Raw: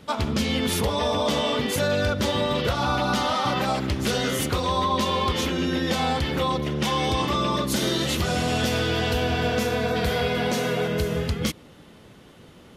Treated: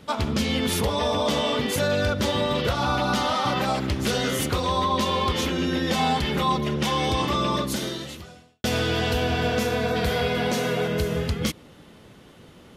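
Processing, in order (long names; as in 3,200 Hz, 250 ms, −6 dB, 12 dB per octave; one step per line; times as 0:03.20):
0:05.94–0:06.76: comb filter 4.9 ms, depth 61%
0:07.57–0:08.64: fade out quadratic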